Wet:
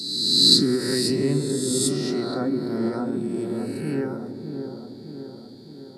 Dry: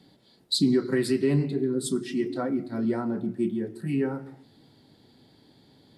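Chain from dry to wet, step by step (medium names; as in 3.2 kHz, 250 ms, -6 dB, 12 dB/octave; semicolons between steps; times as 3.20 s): reverse spectral sustain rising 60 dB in 1.50 s; resonant high shelf 3.6 kHz +6 dB, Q 3; on a send: feedback echo behind a low-pass 610 ms, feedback 57%, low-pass 970 Hz, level -6 dB; on the sum: endings held to a fixed fall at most 140 dB/s; trim -2 dB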